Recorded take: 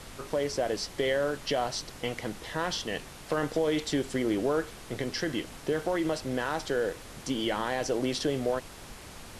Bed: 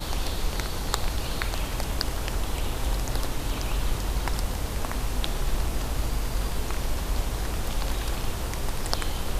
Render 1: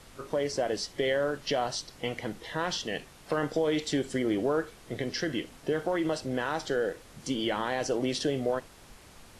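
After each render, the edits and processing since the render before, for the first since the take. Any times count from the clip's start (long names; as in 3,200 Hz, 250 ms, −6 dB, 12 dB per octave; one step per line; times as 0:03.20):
noise reduction from a noise print 7 dB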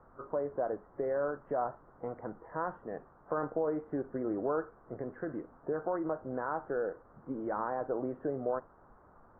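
Butterworth low-pass 1,400 Hz 48 dB per octave
low-shelf EQ 450 Hz −9.5 dB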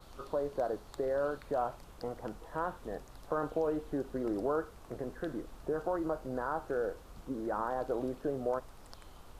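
mix in bed −25.5 dB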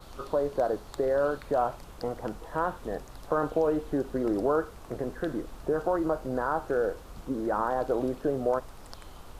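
level +6.5 dB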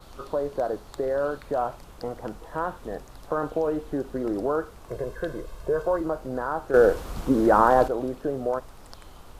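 0:04.88–0:06.01: comb filter 1.9 ms, depth 68%
0:06.74–0:07.88: clip gain +10.5 dB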